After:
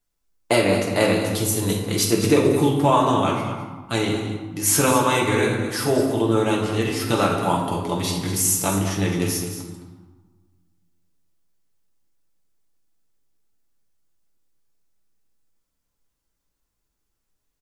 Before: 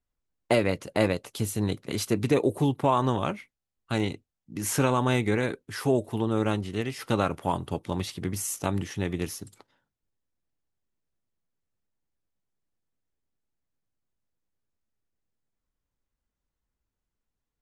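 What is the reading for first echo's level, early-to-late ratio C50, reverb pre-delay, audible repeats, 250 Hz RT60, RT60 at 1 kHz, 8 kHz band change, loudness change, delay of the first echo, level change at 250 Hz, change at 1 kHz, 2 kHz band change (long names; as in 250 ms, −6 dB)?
−11.5 dB, 3.0 dB, 6 ms, 1, 1.8 s, 1.5 s, +12.5 dB, +7.0 dB, 213 ms, +6.5 dB, +7.5 dB, +7.5 dB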